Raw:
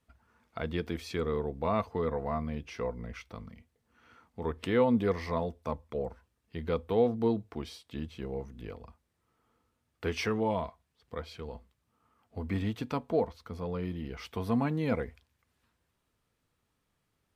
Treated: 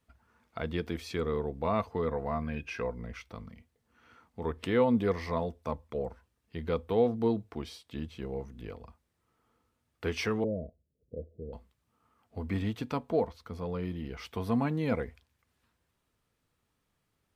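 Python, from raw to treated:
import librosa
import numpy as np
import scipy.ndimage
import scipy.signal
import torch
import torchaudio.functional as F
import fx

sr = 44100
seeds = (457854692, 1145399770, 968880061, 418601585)

y = fx.small_body(x, sr, hz=(1600.0, 2500.0), ring_ms=45, db=18, at=(2.42, 2.82))
y = fx.cheby1_lowpass(y, sr, hz=600.0, order=6, at=(10.44, 11.53))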